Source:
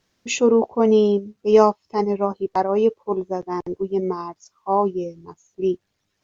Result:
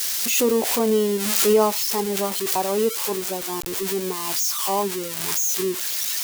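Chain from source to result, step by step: switching spikes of -12 dBFS; backwards sustainer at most 33 dB/s; gain -4.5 dB

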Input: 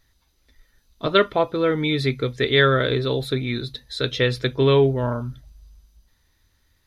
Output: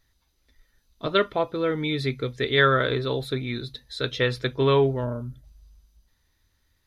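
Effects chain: 2.57–5.01 dynamic EQ 1100 Hz, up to +6 dB, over -32 dBFS, Q 0.95; 5.04–5.44 spectral gain 660–6500 Hz -7 dB; gain -4.5 dB

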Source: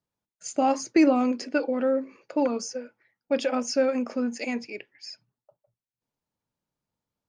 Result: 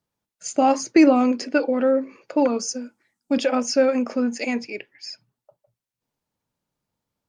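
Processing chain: 2.68–3.38 graphic EQ 125/250/500/2000/8000 Hz -6/+8/-9/-8/+12 dB; gain +5 dB; AAC 192 kbps 48000 Hz

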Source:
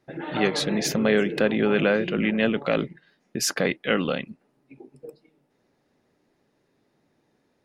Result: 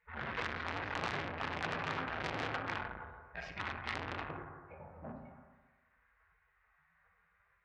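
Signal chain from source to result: HPF 54 Hz 24 dB/oct; harmonic-percussive split percussive -8 dB; LPF 1500 Hz 24 dB/oct; spectral gate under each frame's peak -25 dB weak; compressor 6:1, threshold -51 dBFS, peak gain reduction 14 dB; low shelf 270 Hz +10 dB; notches 60/120 Hz; reverb RT60 1.3 s, pre-delay 3 ms, DRR -1 dB; core saturation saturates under 3000 Hz; gain +18 dB

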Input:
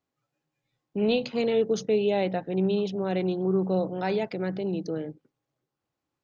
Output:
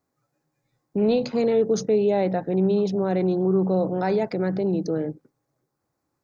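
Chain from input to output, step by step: bell 3000 Hz -14 dB 0.69 oct; in parallel at +3 dB: limiter -25.5 dBFS, peak gain reduction 10.5 dB

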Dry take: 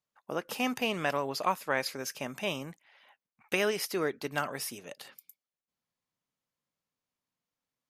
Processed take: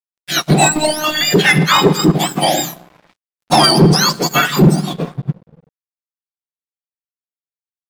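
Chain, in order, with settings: spectrum mirrored in octaves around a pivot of 1400 Hz; 0.69–1.21 robotiser 306 Hz; shoebox room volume 2100 m³, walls mixed, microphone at 0.39 m; soft clip -27 dBFS, distortion -12 dB; 2.43–3.53 doubler 30 ms -5 dB; crossover distortion -56 dBFS; maximiser +31 dB; upward expander 1.5:1, over -26 dBFS; gain -1.5 dB

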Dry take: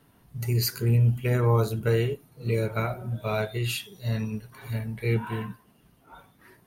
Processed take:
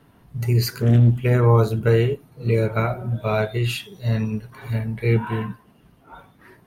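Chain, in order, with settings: high shelf 4300 Hz -9.5 dB; 0.76–1.22 Doppler distortion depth 0.67 ms; gain +6.5 dB

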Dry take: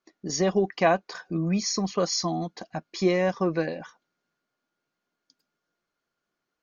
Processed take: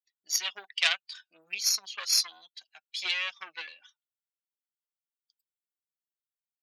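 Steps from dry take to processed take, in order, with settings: per-bin expansion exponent 1.5; added harmonics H 3 -18 dB, 6 -18 dB, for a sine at -10 dBFS; resonant high-pass 2900 Hz, resonance Q 2.3; gain +6.5 dB

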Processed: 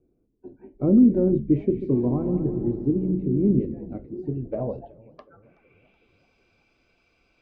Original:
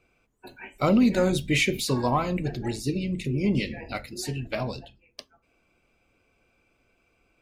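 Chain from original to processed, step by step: low-pass sweep 340 Hz -> 4800 Hz, 4.33–6.22; 1.56–3.65 multi-head echo 70 ms, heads second and third, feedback 54%, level -11 dB; warbling echo 0.379 s, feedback 52%, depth 217 cents, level -23 dB

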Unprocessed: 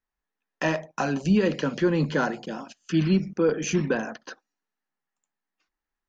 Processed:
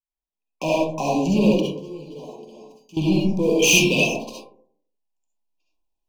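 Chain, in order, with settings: recorder AGC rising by 6.5 dB/s; 3.59–4.07 resonant high shelf 1900 Hz +12.5 dB, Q 3; sample leveller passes 3; brick-wall FIR band-stop 1100–2300 Hz; 1.6–2.97 resonator 430 Hz, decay 0.33 s, harmonics odd, mix 90%; reverb RT60 0.55 s, pre-delay 25 ms, DRR -4 dB; gain -10.5 dB

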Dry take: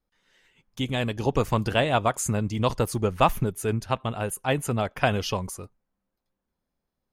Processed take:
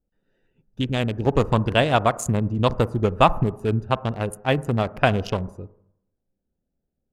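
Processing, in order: Wiener smoothing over 41 samples; on a send: LPF 1500 Hz 24 dB/oct + reverb RT60 0.75 s, pre-delay 36 ms, DRR 19 dB; on the sum: gain +4.5 dB

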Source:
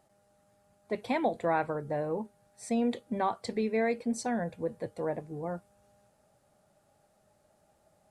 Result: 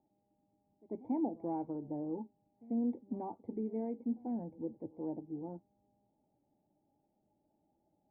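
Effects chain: vocal tract filter u; reverse echo 93 ms -21.5 dB; gain +3 dB

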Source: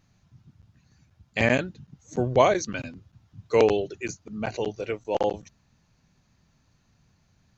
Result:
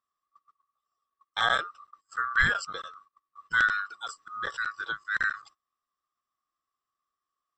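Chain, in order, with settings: band-swap scrambler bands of 1000 Hz; gate -49 dBFS, range -20 dB; 1.62–4.19 AM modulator 98 Hz, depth 20%; gain -3.5 dB

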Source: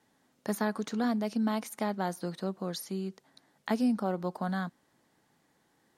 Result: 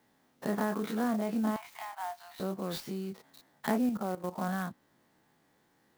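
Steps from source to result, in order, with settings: spectral dilation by 60 ms; treble ducked by the level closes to 2000 Hz, closed at -23.5 dBFS; 1.56–2.4 rippled Chebyshev high-pass 680 Hz, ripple 6 dB; 3.89–4.38 level quantiser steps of 15 dB; clock jitter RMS 0.03 ms; gain -3 dB

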